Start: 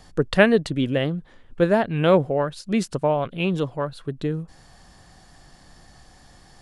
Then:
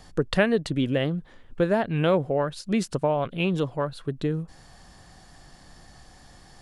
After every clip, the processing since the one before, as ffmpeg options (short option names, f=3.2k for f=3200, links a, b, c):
-af "acompressor=threshold=-21dB:ratio=2"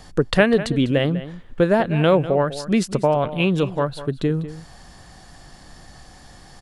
-filter_complex "[0:a]asplit=2[a][b];[b]adelay=198.3,volume=-14dB,highshelf=f=4k:g=-4.46[c];[a][c]amix=inputs=2:normalize=0,volume=5.5dB"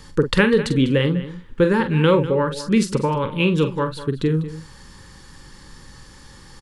-filter_complex "[0:a]asuperstop=centerf=680:order=8:qfactor=2.7,asplit=2[a][b];[b]adelay=45,volume=-9.5dB[c];[a][c]amix=inputs=2:normalize=0,volume=1dB"